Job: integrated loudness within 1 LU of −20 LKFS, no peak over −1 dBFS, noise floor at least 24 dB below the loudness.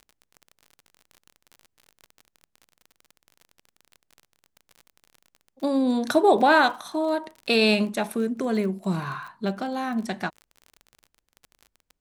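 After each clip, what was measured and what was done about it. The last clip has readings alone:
crackle rate 36 per second; integrated loudness −24.0 LKFS; sample peak −6.5 dBFS; target loudness −20.0 LKFS
→ click removal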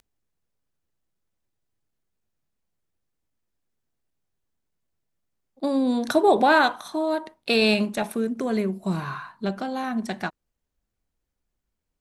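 crackle rate 0.083 per second; integrated loudness −23.5 LKFS; sample peak −6.5 dBFS; target loudness −20.0 LKFS
→ level +3.5 dB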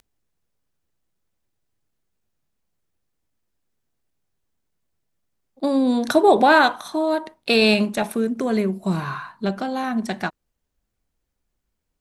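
integrated loudness −20.0 LKFS; sample peak −3.0 dBFS; background noise floor −77 dBFS

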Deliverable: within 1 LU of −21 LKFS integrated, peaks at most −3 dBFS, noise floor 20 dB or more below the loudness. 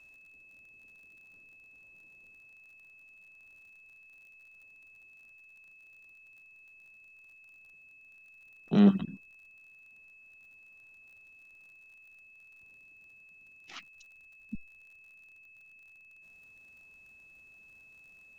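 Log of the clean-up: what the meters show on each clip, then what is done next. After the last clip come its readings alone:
crackle rate 44 per second; interfering tone 2,600 Hz; level of the tone −54 dBFS; integrated loudness −29.0 LKFS; sample peak −11.0 dBFS; target loudness −21.0 LKFS
→ click removal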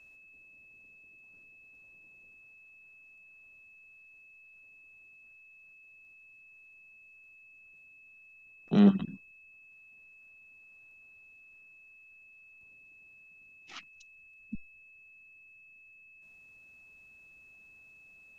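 crackle rate 0.16 per second; interfering tone 2,600 Hz; level of the tone −54 dBFS
→ notch filter 2,600 Hz, Q 30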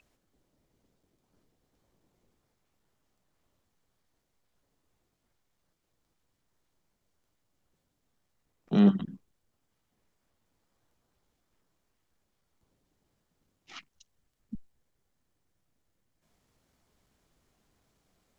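interfering tone none found; integrated loudness −25.0 LKFS; sample peak −11.0 dBFS; target loudness −21.0 LKFS
→ level +4 dB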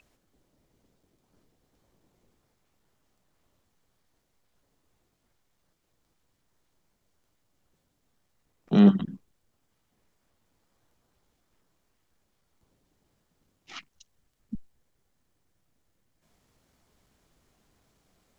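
integrated loudness −21.5 LKFS; sample peak −7.0 dBFS; background noise floor −75 dBFS

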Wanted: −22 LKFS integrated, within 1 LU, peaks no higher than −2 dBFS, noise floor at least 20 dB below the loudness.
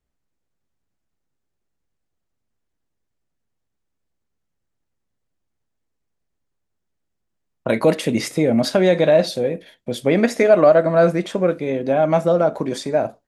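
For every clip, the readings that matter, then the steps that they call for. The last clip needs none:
integrated loudness −18.0 LKFS; sample peak −2.5 dBFS; target loudness −22.0 LKFS
→ level −4 dB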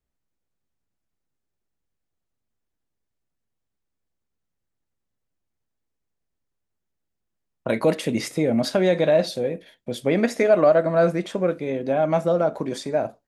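integrated loudness −22.0 LKFS; sample peak −6.5 dBFS; background noise floor −80 dBFS

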